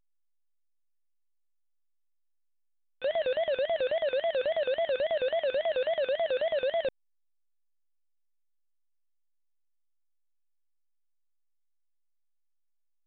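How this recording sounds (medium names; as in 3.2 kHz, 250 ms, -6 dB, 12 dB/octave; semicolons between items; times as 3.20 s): chopped level 9.2 Hz, depth 60%, duty 60%; a quantiser's noise floor 6-bit, dither none; A-law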